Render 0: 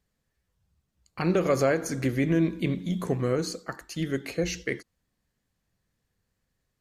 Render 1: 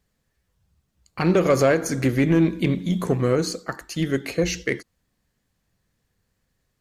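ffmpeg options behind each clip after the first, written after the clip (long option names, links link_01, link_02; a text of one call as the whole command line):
ffmpeg -i in.wav -af "aeval=exprs='0.224*(cos(1*acos(clip(val(0)/0.224,-1,1)))-cos(1*PI/2))+0.00562*(cos(7*acos(clip(val(0)/0.224,-1,1)))-cos(7*PI/2))':channel_layout=same,asoftclip=type=tanh:threshold=-15.5dB,volume=7dB" out.wav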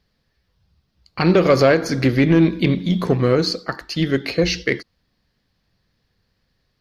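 ffmpeg -i in.wav -af "highshelf=frequency=6000:width_type=q:width=3:gain=-8,volume=4dB" out.wav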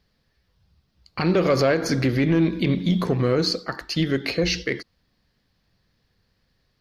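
ffmpeg -i in.wav -af "alimiter=limit=-12dB:level=0:latency=1:release=97" out.wav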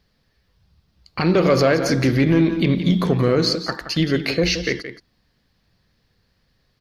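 ffmpeg -i in.wav -af "aecho=1:1:173:0.282,volume=3dB" out.wav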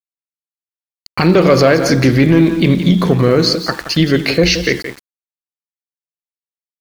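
ffmpeg -i in.wav -af "dynaudnorm=framelen=130:gausssize=3:maxgain=12.5dB,aeval=exprs='val(0)*gte(abs(val(0)),0.0299)':channel_layout=same" out.wav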